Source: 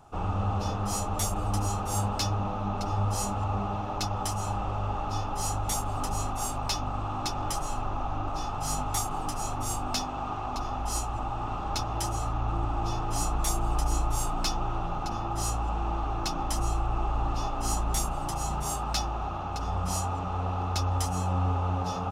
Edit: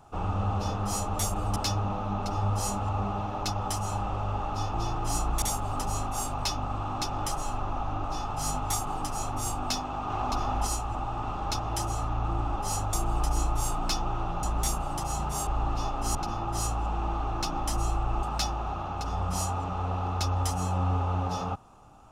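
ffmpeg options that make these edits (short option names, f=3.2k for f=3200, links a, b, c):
-filter_complex "[0:a]asplit=12[a][b][c][d][e][f][g][h][i][j][k][l];[a]atrim=end=1.562[m];[b]atrim=start=2.108:end=5.292[n];[c]atrim=start=12.798:end=13.482[o];[d]atrim=start=5.658:end=10.342[p];[e]atrim=start=10.338:end=10.912,asetpts=PTS-STARTPTS,volume=3.5dB[q];[f]atrim=start=10.908:end=12.802[r];[g]atrim=start=5.288:end=5.662[s];[h]atrim=start=13.478:end=14.982[t];[i]atrim=start=17.738:end=18.782[u];[j]atrim=start=17.058:end=17.742[v];[k]atrim=start=14.978:end=17.062[w];[l]atrim=start=18.778[x];[m][n]acrossfade=d=0.004:c1=hsin:c2=hsin[y];[y][o]acrossfade=d=0.004:c1=hsin:c2=hsin[z];[z][p]acrossfade=d=0.004:c1=hsin:c2=hsin[aa];[aa][q]acrossfade=d=0.004:c1=hsin:c2=hsin[ab];[ab][r]acrossfade=d=0.004:c1=hsin:c2=hsin[ac];[ac][s]acrossfade=d=0.004:c1=hsin:c2=hsin[ad];[ad][t]acrossfade=d=0.004:c1=hsin:c2=hsin[ae];[ae][u]acrossfade=d=0.004:c1=hsin:c2=hsin[af];[af][v]acrossfade=d=0.004:c1=hsin:c2=hsin[ag];[ag][w]acrossfade=d=0.004:c1=hsin:c2=hsin[ah];[ah][x]acrossfade=d=0.004:c1=hsin:c2=hsin"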